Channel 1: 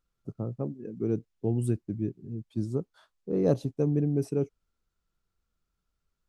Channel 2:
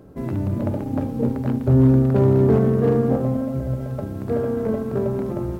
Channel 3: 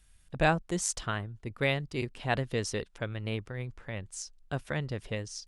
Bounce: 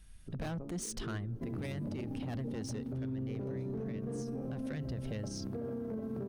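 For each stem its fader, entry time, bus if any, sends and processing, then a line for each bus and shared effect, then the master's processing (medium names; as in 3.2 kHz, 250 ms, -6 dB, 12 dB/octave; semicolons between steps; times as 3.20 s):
+0.5 dB, 0.00 s, no bus, no send, compression, threshold -31 dBFS, peak gain reduction 12.5 dB; feedback comb 56 Hz, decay 0.88 s, harmonics all, mix 80%
-13.0 dB, 1.25 s, bus A, no send, none
+1.0 dB, 0.00 s, bus A, no send, bass shelf 84 Hz +6.5 dB; saturation -30 dBFS, distortion -7 dB
bus A: 0.0 dB, peaking EQ 210 Hz +7.5 dB 1.6 oct; compression, threshold -31 dBFS, peak gain reduction 12.5 dB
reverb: none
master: band-stop 7.4 kHz, Q 7; peak limiter -31.5 dBFS, peak gain reduction 8 dB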